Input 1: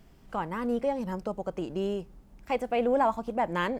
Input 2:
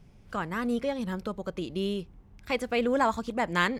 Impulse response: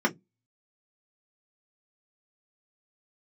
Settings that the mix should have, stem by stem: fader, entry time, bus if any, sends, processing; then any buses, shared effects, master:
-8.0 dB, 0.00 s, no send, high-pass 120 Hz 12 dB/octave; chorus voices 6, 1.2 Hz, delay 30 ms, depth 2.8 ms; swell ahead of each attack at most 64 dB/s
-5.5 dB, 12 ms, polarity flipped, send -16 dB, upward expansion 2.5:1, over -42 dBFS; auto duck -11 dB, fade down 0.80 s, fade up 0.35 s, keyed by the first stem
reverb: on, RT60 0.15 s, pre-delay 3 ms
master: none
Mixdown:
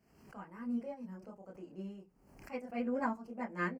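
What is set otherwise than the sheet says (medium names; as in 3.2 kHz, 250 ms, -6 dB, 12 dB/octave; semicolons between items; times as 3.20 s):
stem 1 -8.0 dB -> -18.0 dB; master: extra Butterworth band-stop 3.6 kHz, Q 2.7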